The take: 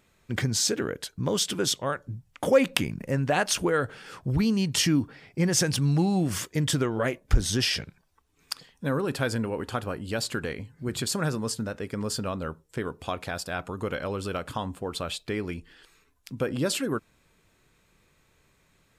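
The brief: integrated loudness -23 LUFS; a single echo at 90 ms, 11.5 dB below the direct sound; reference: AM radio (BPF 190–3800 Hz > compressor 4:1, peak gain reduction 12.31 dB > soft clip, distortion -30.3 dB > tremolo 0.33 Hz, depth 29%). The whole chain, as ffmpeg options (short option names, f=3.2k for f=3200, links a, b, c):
-af "highpass=190,lowpass=3.8k,aecho=1:1:90:0.266,acompressor=threshold=-28dB:ratio=4,asoftclip=threshold=-15dB,tremolo=f=0.33:d=0.29,volume=12.5dB"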